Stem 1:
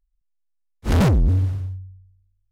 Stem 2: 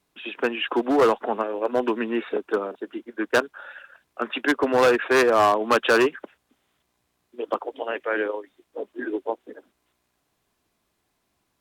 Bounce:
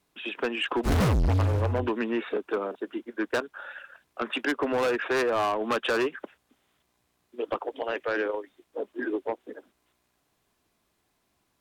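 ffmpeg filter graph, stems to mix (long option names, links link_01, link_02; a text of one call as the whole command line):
ffmpeg -i stem1.wav -i stem2.wav -filter_complex "[0:a]acompressor=threshold=-20dB:ratio=6,acrusher=bits=5:mix=0:aa=0.5,volume=-3dB[link_01];[1:a]acompressor=threshold=-22dB:ratio=2.5,volume=-6dB[link_02];[link_01][link_02]amix=inputs=2:normalize=0,aeval=exprs='0.15*(cos(1*acos(clip(val(0)/0.15,-1,1)))-cos(1*PI/2))+0.0299*(cos(5*acos(clip(val(0)/0.15,-1,1)))-cos(5*PI/2))':channel_layout=same" out.wav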